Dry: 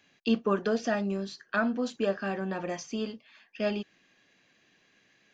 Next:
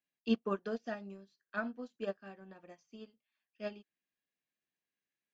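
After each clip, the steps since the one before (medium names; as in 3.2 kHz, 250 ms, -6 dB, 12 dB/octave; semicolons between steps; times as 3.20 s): upward expansion 2.5:1, over -39 dBFS; trim -3.5 dB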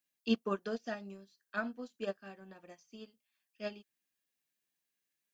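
treble shelf 4.1 kHz +10 dB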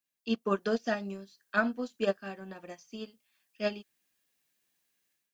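level rider gain up to 11.5 dB; trim -2.5 dB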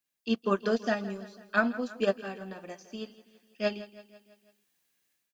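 feedback delay 165 ms, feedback 56%, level -17 dB; trim +2 dB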